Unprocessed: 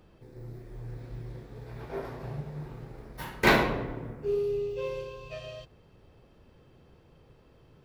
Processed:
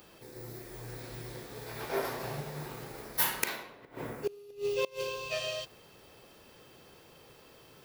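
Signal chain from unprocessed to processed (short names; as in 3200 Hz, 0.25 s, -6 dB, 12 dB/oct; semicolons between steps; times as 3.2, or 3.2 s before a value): flipped gate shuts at -24 dBFS, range -25 dB; RIAA curve recording; gain +6.5 dB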